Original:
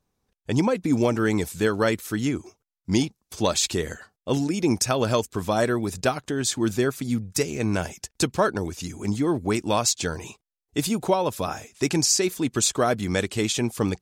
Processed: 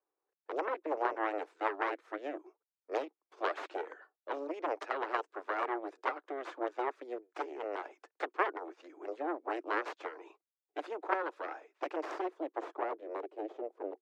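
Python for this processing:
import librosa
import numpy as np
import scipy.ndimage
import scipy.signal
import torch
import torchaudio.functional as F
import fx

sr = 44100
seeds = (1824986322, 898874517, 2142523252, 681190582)

y = fx.cheby_harmonics(x, sr, harmonics=(3, 6), levels_db=(-7, -23), full_scale_db=-7.5)
y = scipy.signal.sosfilt(scipy.signal.butter(12, 310.0, 'highpass', fs=sr, output='sos'), y)
y = fx.filter_sweep_lowpass(y, sr, from_hz=1400.0, to_hz=530.0, start_s=11.83, end_s=13.59, q=0.96)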